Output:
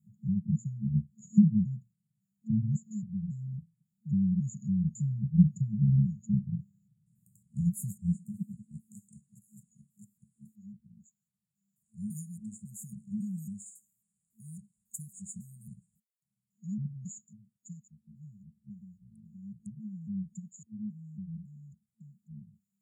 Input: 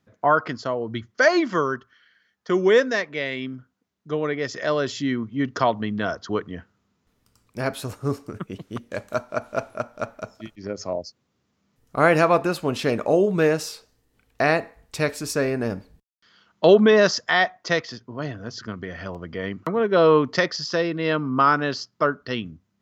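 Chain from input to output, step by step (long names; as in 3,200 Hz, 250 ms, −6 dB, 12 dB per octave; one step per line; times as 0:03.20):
pitch shifter gated in a rhythm −8 semitones, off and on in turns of 275 ms
brick-wall band-stop 220–6,700 Hz
high-pass filter sweep 150 Hz → 380 Hz, 0:07.45–0:09.12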